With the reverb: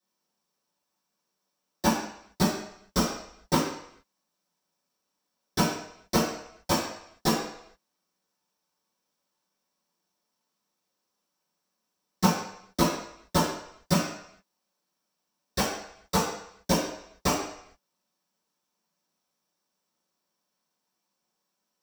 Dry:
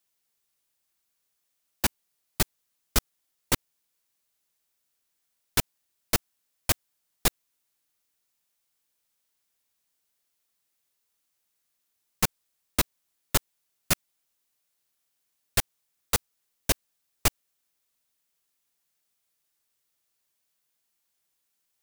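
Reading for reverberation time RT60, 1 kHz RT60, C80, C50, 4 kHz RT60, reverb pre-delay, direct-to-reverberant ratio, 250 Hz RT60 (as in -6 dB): 0.70 s, 0.75 s, 6.0 dB, 3.0 dB, 0.70 s, 3 ms, -14.5 dB, 0.55 s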